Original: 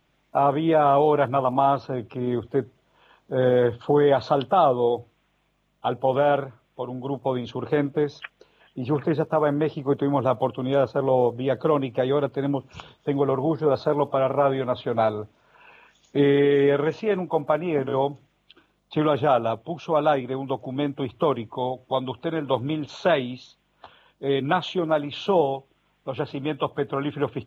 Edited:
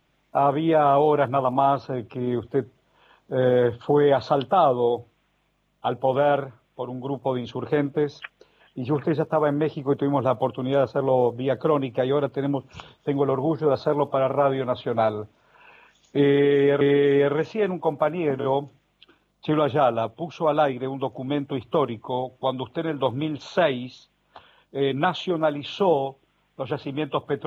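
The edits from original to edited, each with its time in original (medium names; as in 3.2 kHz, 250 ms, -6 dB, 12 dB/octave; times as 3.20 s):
16.29–16.81 s: loop, 2 plays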